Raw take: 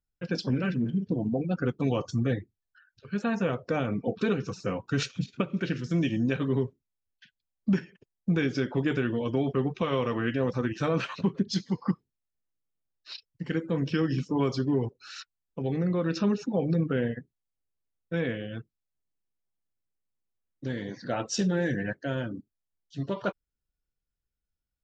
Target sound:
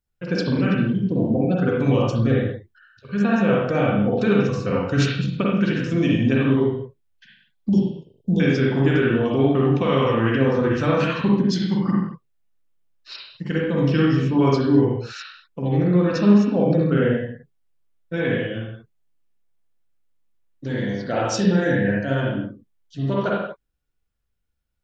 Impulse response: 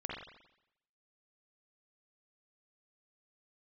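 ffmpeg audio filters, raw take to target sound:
-filter_complex "[0:a]asettb=1/sr,asplit=3[s0][s1][s2];[s0]atrim=end=7.694[s3];[s1]atrim=start=7.69:end=8.4,asetpts=PTS-STARTPTS,afade=t=in:d=0.004:c=qsin,afade=t=out:st=0.706:d=0.004:c=qsin,asuperstop=centerf=1700:order=12:qfactor=0.77[s4];[s2]atrim=start=8.396[s5];[s3][s4]acrossfade=d=0.004:c1=hsin:c2=qsin[s6];[s6][s5]acrossfade=d=0.004:c1=qsin:c2=hsin[s7];[1:a]atrim=start_sample=2205,afade=t=out:st=0.29:d=0.01,atrim=end_sample=13230[s8];[s7][s8]afir=irnorm=-1:irlink=0,volume=2.37"

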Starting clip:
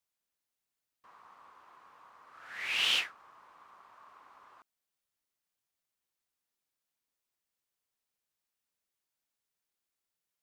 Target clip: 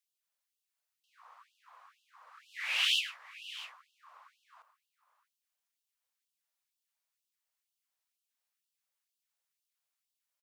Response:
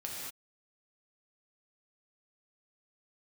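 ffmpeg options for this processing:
-af "aecho=1:1:104|657:0.188|0.158,afftfilt=real='re*gte(b*sr/1024,440*pow(2700/440,0.5+0.5*sin(2*PI*2.1*pts/sr)))':imag='im*gte(b*sr/1024,440*pow(2700/440,0.5+0.5*sin(2*PI*2.1*pts/sr)))':win_size=1024:overlap=0.75"

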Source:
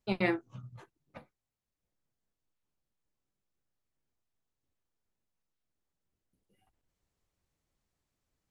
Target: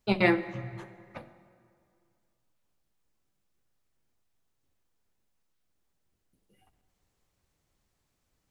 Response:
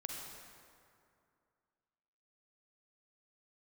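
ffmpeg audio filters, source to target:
-filter_complex "[0:a]bandreject=f=46.93:t=h:w=4,bandreject=f=93.86:t=h:w=4,bandreject=f=140.79:t=h:w=4,bandreject=f=187.72:t=h:w=4,bandreject=f=234.65:t=h:w=4,bandreject=f=281.58:t=h:w=4,bandreject=f=328.51:t=h:w=4,bandreject=f=375.44:t=h:w=4,bandreject=f=422.37:t=h:w=4,bandreject=f=469.3:t=h:w=4,bandreject=f=516.23:t=h:w=4,bandreject=f=563.16:t=h:w=4,bandreject=f=610.09:t=h:w=4,bandreject=f=657.02:t=h:w=4,asplit=2[s0][s1];[1:a]atrim=start_sample=2205[s2];[s1][s2]afir=irnorm=-1:irlink=0,volume=0.376[s3];[s0][s3]amix=inputs=2:normalize=0,volume=1.78"

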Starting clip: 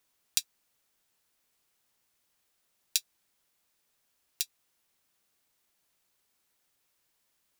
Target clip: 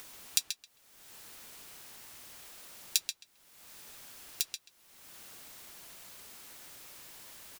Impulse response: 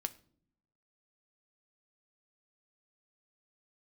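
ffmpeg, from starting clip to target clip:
-filter_complex "[0:a]acompressor=mode=upward:threshold=0.0282:ratio=2.5,asplit=2[s0][s1];[s1]adelay=133,lowpass=f=4100:p=1,volume=0.596,asplit=2[s2][s3];[s3]adelay=133,lowpass=f=4100:p=1,volume=0.18,asplit=2[s4][s5];[s5]adelay=133,lowpass=f=4100:p=1,volume=0.18[s6];[s2][s4][s6]amix=inputs=3:normalize=0[s7];[s0][s7]amix=inputs=2:normalize=0"

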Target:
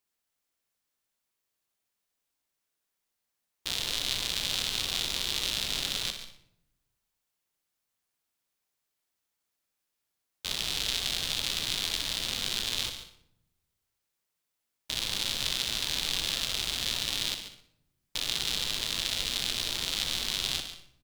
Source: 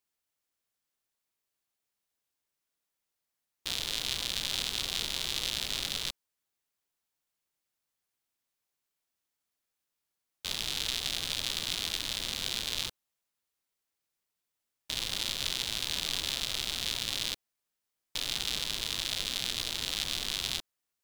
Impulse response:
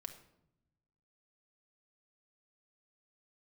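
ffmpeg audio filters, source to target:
-filter_complex "[0:a]aecho=1:1:61|122|183|244:0.335|0.134|0.0536|0.0214,asplit=2[s0][s1];[1:a]atrim=start_sample=2205,adelay=140[s2];[s1][s2]afir=irnorm=-1:irlink=0,volume=0.447[s3];[s0][s3]amix=inputs=2:normalize=0,volume=1.19"

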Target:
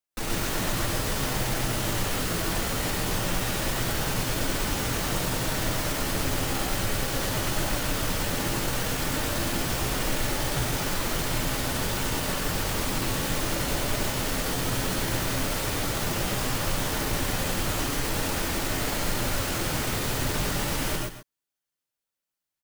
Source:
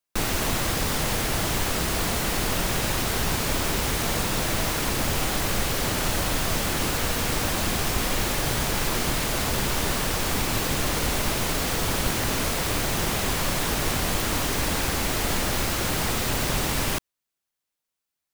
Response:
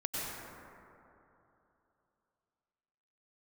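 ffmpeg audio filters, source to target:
-filter_complex "[0:a]aecho=1:1:111:0.266,atempo=0.81[s0];[1:a]atrim=start_sample=2205,atrim=end_sample=6174[s1];[s0][s1]afir=irnorm=-1:irlink=0,volume=0.668"

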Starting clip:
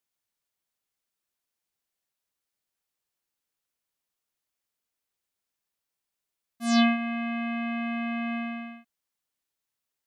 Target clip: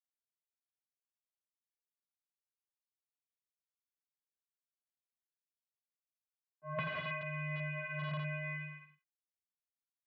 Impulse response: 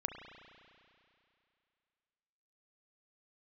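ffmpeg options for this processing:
-filter_complex "[0:a]agate=range=0.0224:threshold=0.0282:ratio=3:detection=peak,asettb=1/sr,asplit=3[s0][s1][s2];[s0]atrim=end=7.794[s3];[s1]atrim=start=7.79:end=8.69,asetpts=PTS-STARTPTS,afade=t=in:d=0.004:c=qsin,afade=t=out:st=0.896:d=0.004:c=qsin,bandreject=f=680:w=21[s4];[s2]atrim=start=8.686[s5];[s3][s4]acrossfade=d=0.004:c1=hsin:c2=qsin[s6];[s6][s5]acrossfade=d=0.004:c1=qsin:c2=hsin,flanger=delay=18:depth=4.9:speed=0.54,acrusher=bits=10:mix=0:aa=0.000001,acrossover=split=350|1400[s7][s8][s9];[s7]adelay=110[s10];[s9]adelay=160[s11];[s10][s8][s11]amix=inputs=3:normalize=0[s12];[1:a]atrim=start_sample=2205,atrim=end_sample=6174,asetrate=66150,aresample=44100[s13];[s12][s13]afir=irnorm=-1:irlink=0,aeval=exprs='(mod(39.8*val(0)+1,2)-1)/39.8':c=same,highpass=f=190:t=q:w=0.5412,highpass=f=190:t=q:w=1.307,lowpass=f=2800:t=q:w=0.5176,lowpass=f=2800:t=q:w=0.7071,lowpass=f=2800:t=q:w=1.932,afreqshift=-83,volume=1.26"

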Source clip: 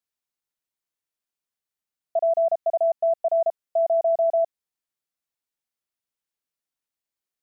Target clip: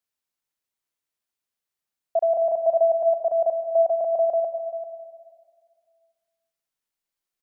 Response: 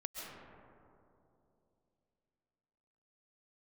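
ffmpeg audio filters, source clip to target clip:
-filter_complex "[0:a]asettb=1/sr,asplit=3[s0][s1][s2];[s0]atrim=end=2.414[s3];[s1]atrim=start=2.41:end=3.25,asetpts=PTS-STARTPTS,afade=t=in:d=0.004:c=qsin,afade=t=out:st=0.836:d=0.004:c=qsin,aecho=1:1:6.3:0.39,atrim=end_sample=37044[s4];[s2]atrim=start=3.246[s5];[s3][s4]acrossfade=d=0.004:c1=hsin:c2=qsin[s6];[s6][s5]acrossfade=d=0.004:c1=qsin:c2=hsin,aecho=1:1:393:0.2,asplit=2[s7][s8];[1:a]atrim=start_sample=2205,asetrate=70560,aresample=44100,lowshelf=f=380:g=-5[s9];[s8][s9]afir=irnorm=-1:irlink=0,volume=1.12[s10];[s7][s10]amix=inputs=2:normalize=0,volume=0.841"

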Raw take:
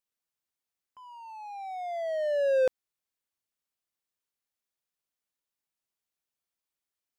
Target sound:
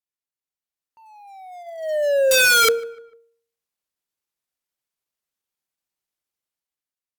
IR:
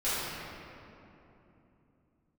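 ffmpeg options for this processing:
-filter_complex "[0:a]agate=range=0.316:threshold=0.0178:ratio=16:detection=peak,bandreject=f=259.9:t=h:w=4,bandreject=f=519.8:t=h:w=4,bandreject=f=779.7:t=h:w=4,bandreject=f=1039.6:t=h:w=4,bandreject=f=1299.5:t=h:w=4,bandreject=f=1559.4:t=h:w=4,bandreject=f=1819.3:t=h:w=4,bandreject=f=2079.2:t=h:w=4,bandreject=f=2339.1:t=h:w=4,bandreject=f=2599:t=h:w=4,bandreject=f=2858.9:t=h:w=4,bandreject=f=3118.8:t=h:w=4,bandreject=f=3378.7:t=h:w=4,bandreject=f=3638.6:t=h:w=4,bandreject=f=3898.5:t=h:w=4,dynaudnorm=f=360:g=5:m=2.82,asplit=2[s0][s1];[s1]acrusher=bits=3:mode=log:mix=0:aa=0.000001,volume=0.282[s2];[s0][s2]amix=inputs=2:normalize=0,aeval=exprs='(mod(3.76*val(0)+1,2)-1)/3.76':c=same,asetrate=39289,aresample=44100,atempo=1.12246,asplit=2[s3][s4];[s4]adelay=149,lowpass=f=2200:p=1,volume=0.075,asplit=2[s5][s6];[s6]adelay=149,lowpass=f=2200:p=1,volume=0.46,asplit=2[s7][s8];[s8]adelay=149,lowpass=f=2200:p=1,volume=0.46[s9];[s5][s7][s9]amix=inputs=3:normalize=0[s10];[s3][s10]amix=inputs=2:normalize=0,volume=1.12"

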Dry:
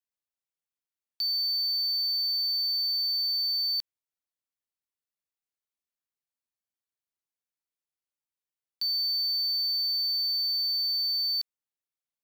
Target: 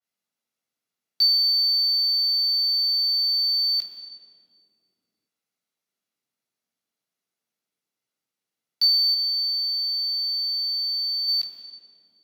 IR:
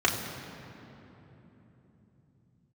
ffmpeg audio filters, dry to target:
-filter_complex "[0:a]asettb=1/sr,asplit=3[s0][s1][s2];[s0]atrim=end=9.144[s3];[s1]atrim=start=9.14:end=11.28,asetpts=PTS-STARTPTS,afade=t=in:d=0.004:c=qsin,afade=t=out:st=2.136:d=0.004:c=qsin,bass=f=250:g=-6,treble=f=4000:g=-6[s4];[s2]atrim=start=11.276[s5];[s3][s4]acrossfade=d=0.004:c1=hsin:c2=qsin[s6];[s6][s5]acrossfade=d=0.004:c1=qsin:c2=hsin[s7];[1:a]atrim=start_sample=2205,asetrate=79380,aresample=44100[s8];[s7][s8]afir=irnorm=-1:irlink=0,adynamicequalizer=threshold=0.0316:dfrequency=2800:dqfactor=0.7:tfrequency=2800:tqfactor=0.7:attack=5:release=100:ratio=0.375:range=2.5:mode=cutabove:tftype=highshelf"

